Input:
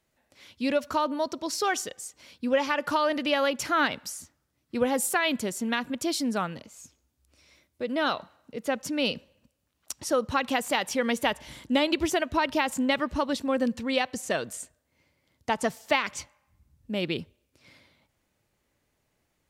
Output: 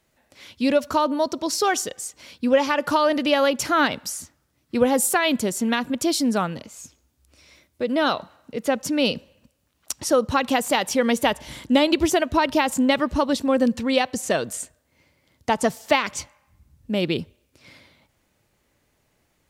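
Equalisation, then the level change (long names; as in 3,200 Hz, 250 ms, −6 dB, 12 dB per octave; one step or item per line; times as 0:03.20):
dynamic equaliser 2,000 Hz, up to −4 dB, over −40 dBFS, Q 0.74
+7.0 dB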